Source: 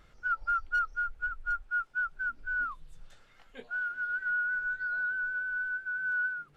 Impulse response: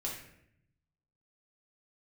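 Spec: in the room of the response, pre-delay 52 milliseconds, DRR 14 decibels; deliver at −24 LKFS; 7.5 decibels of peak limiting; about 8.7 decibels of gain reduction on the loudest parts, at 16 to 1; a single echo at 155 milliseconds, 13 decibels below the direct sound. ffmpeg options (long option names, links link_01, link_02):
-filter_complex "[0:a]acompressor=threshold=-34dB:ratio=16,alimiter=level_in=11dB:limit=-24dB:level=0:latency=1,volume=-11dB,aecho=1:1:155:0.224,asplit=2[link_01][link_02];[1:a]atrim=start_sample=2205,adelay=52[link_03];[link_02][link_03]afir=irnorm=-1:irlink=0,volume=-15.5dB[link_04];[link_01][link_04]amix=inputs=2:normalize=0,volume=15dB"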